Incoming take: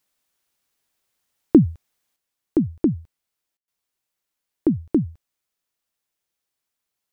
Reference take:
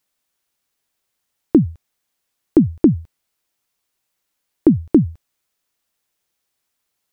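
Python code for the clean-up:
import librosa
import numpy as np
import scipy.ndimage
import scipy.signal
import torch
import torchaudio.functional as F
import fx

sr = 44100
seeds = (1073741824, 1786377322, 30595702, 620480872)

y = fx.fix_ambience(x, sr, seeds[0], print_start_s=5.36, print_end_s=5.86, start_s=3.57, end_s=3.68)
y = fx.fix_level(y, sr, at_s=2.16, step_db=7.0)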